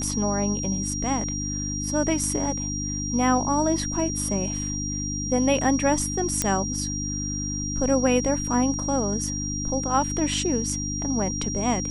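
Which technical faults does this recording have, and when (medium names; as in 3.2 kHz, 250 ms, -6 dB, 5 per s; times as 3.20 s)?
hum 50 Hz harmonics 6 -31 dBFS
whine 5.7 kHz -30 dBFS
6.42 s: pop -7 dBFS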